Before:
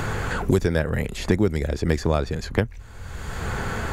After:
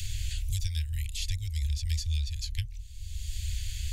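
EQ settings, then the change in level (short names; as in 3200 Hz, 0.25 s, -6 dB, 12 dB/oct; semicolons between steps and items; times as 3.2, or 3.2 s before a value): inverse Chebyshev band-stop 190–1300 Hz, stop band 50 dB; 0.0 dB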